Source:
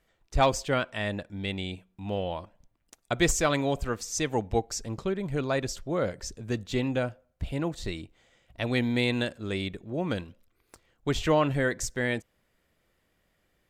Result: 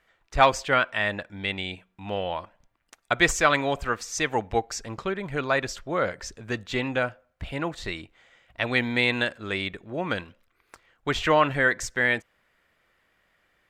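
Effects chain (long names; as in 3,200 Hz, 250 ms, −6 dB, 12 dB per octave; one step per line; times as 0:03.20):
parametric band 1,600 Hz +13 dB 2.7 octaves
level −3.5 dB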